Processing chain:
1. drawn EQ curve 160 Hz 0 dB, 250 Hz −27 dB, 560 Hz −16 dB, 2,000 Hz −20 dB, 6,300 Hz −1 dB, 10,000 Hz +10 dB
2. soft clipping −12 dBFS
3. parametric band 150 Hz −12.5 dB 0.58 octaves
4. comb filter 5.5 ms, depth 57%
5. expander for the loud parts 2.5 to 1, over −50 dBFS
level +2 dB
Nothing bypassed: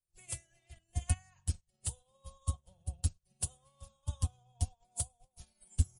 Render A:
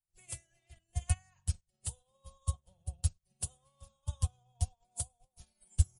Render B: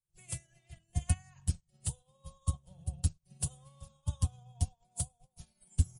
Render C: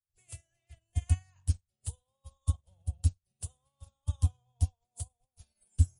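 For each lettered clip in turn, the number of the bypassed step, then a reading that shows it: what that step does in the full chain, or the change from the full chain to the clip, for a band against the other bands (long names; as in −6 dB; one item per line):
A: 2, distortion level −20 dB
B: 3, 250 Hz band +5.0 dB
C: 4, 125 Hz band +10.0 dB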